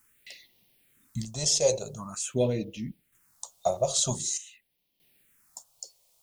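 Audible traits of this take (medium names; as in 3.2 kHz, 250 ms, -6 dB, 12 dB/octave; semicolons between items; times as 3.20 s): a quantiser's noise floor 12-bit, dither triangular; phasing stages 4, 0.46 Hz, lowest notch 250–1400 Hz; random-step tremolo 1.6 Hz, depth 75%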